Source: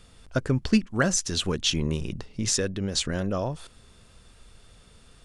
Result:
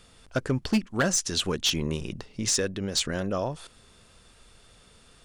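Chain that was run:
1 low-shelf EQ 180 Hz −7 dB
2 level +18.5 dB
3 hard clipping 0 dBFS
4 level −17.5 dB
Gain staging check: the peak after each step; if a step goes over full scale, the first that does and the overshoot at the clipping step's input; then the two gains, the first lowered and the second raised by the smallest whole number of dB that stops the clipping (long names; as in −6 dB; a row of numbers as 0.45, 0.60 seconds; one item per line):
−9.0, +9.5, 0.0, −17.5 dBFS
step 2, 9.5 dB
step 2 +8.5 dB, step 4 −7.5 dB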